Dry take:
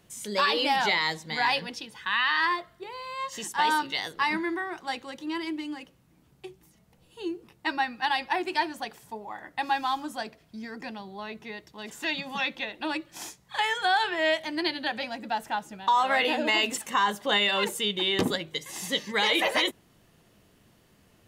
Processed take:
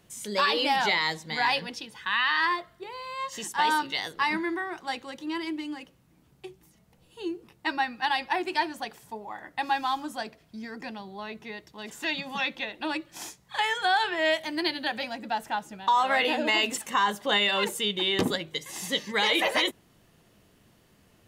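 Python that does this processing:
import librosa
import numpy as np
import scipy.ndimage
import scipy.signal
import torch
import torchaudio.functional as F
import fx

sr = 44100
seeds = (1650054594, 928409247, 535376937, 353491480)

y = fx.high_shelf(x, sr, hz=11000.0, db=9.0, at=(14.25, 15.13))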